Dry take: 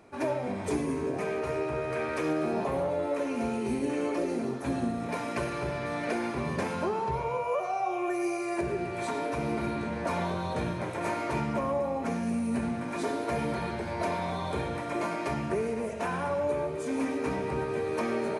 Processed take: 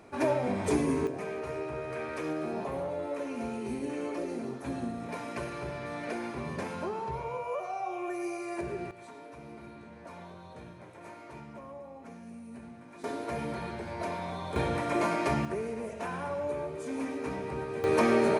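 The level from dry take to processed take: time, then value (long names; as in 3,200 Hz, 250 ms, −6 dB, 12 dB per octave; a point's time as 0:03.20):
+2.5 dB
from 0:01.07 −5 dB
from 0:08.91 −16 dB
from 0:13.04 −4.5 dB
from 0:14.56 +3 dB
from 0:15.45 −4.5 dB
from 0:17.84 +6 dB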